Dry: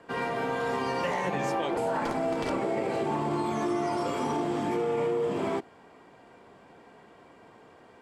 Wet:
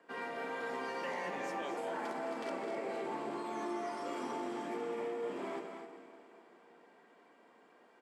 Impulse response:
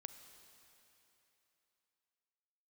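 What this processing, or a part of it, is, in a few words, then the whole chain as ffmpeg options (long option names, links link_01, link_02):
stadium PA: -filter_complex "[0:a]highpass=frequency=210:width=0.5412,highpass=frequency=210:width=1.3066,equalizer=frequency=1800:width_type=o:width=0.77:gain=3.5,aecho=1:1:212.8|256.6:0.316|0.316[link_01];[1:a]atrim=start_sample=2205[link_02];[link_01][link_02]afir=irnorm=-1:irlink=0,volume=-5.5dB"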